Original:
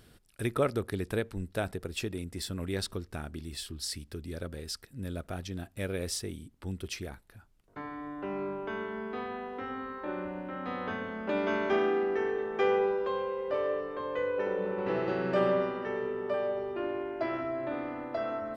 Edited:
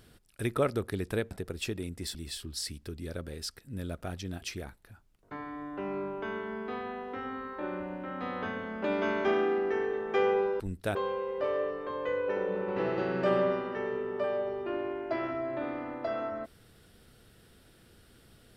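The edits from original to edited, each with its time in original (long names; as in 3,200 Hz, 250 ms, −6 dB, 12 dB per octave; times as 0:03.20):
0:01.31–0:01.66: move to 0:13.05
0:02.50–0:03.41: remove
0:05.68–0:06.87: remove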